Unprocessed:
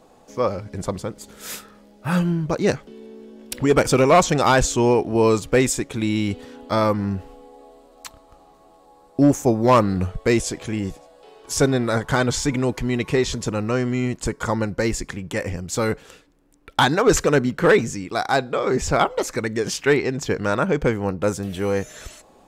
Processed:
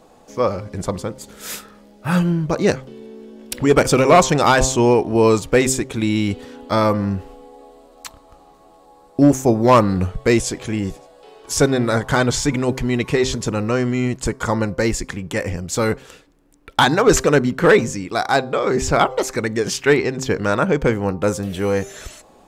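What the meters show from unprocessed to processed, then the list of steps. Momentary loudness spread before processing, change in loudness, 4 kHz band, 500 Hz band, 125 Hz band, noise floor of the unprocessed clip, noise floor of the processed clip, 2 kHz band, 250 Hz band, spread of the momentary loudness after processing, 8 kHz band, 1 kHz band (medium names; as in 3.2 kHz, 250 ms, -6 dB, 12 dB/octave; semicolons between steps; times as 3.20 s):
13 LU, +3.0 dB, +3.0 dB, +2.5 dB, +2.5 dB, -53 dBFS, -50 dBFS, +3.0 dB, +3.0 dB, 14 LU, +3.0 dB, +3.0 dB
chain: de-hum 130.9 Hz, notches 9; trim +3 dB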